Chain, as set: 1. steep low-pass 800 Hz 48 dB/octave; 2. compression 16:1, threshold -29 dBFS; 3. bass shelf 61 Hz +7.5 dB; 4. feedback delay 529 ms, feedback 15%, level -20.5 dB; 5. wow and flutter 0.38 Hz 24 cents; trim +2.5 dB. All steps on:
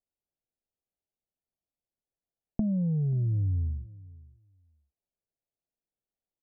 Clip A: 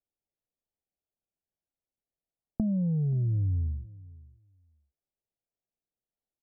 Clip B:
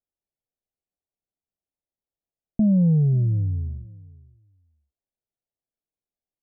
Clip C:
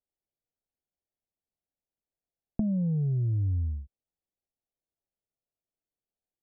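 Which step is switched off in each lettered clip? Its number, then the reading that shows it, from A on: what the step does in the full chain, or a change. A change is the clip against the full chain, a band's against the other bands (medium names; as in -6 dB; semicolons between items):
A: 5, momentary loudness spread change +2 LU; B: 2, mean gain reduction 5.5 dB; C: 4, momentary loudness spread change -2 LU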